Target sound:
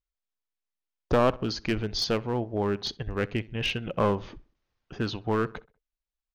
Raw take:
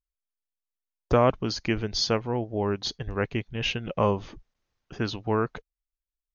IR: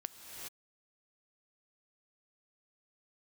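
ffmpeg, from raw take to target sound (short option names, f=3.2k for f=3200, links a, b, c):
-filter_complex "[0:a]lowpass=5.3k,aeval=exprs='clip(val(0),-1,0.075)':c=same,asplit=2[a][b];[b]adelay=64,lowpass=f=2.5k:p=1,volume=-20.5dB,asplit=2[c][d];[d]adelay=64,lowpass=f=2.5k:p=1,volume=0.46,asplit=2[e][f];[f]adelay=64,lowpass=f=2.5k:p=1,volume=0.46[g];[a][c][e][g]amix=inputs=4:normalize=0"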